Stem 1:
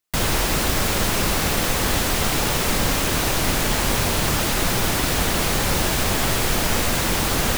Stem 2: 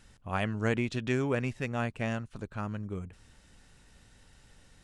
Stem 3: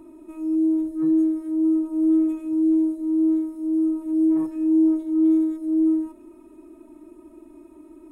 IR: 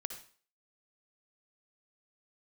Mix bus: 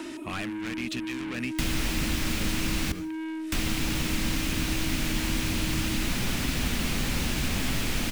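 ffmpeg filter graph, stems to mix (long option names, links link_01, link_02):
-filter_complex "[0:a]adelay=1450,volume=-3dB,asplit=3[link_01][link_02][link_03];[link_01]atrim=end=2.92,asetpts=PTS-STARTPTS,afade=type=out:start_time=2.916:duration=0.004:curve=hsin[link_04];[link_02]atrim=start=2.92:end=3.52,asetpts=PTS-STARTPTS,volume=0[link_05];[link_03]atrim=start=3.52,asetpts=PTS-STARTPTS,afade=type=in:duration=0.004:curve=hsin[link_06];[link_04][link_05][link_06]concat=n=3:v=0:a=1,asplit=2[link_07][link_08];[link_08]volume=-6dB[link_09];[1:a]volume=-4.5dB[link_10];[2:a]highpass=290,volume=-7dB[link_11];[link_10][link_11]amix=inputs=2:normalize=0,asplit=2[link_12][link_13];[link_13]highpass=frequency=720:poles=1,volume=30dB,asoftclip=type=tanh:threshold=-15.5dB[link_14];[link_12][link_14]amix=inputs=2:normalize=0,lowpass=frequency=5200:poles=1,volume=-6dB,acompressor=threshold=-26dB:ratio=6,volume=0dB[link_15];[3:a]atrim=start_sample=2205[link_16];[link_09][link_16]afir=irnorm=-1:irlink=0[link_17];[link_07][link_15][link_17]amix=inputs=3:normalize=0,equalizer=frequency=100:width_type=o:width=0.67:gain=-4,equalizer=frequency=250:width_type=o:width=0.67:gain=11,equalizer=frequency=2500:width_type=o:width=0.67:gain=4,acrossover=split=170|1500|7500[link_18][link_19][link_20][link_21];[link_18]acompressor=threshold=-26dB:ratio=4[link_22];[link_19]acompressor=threshold=-39dB:ratio=4[link_23];[link_20]acompressor=threshold=-34dB:ratio=4[link_24];[link_21]acompressor=threshold=-42dB:ratio=4[link_25];[link_22][link_23][link_24][link_25]amix=inputs=4:normalize=0"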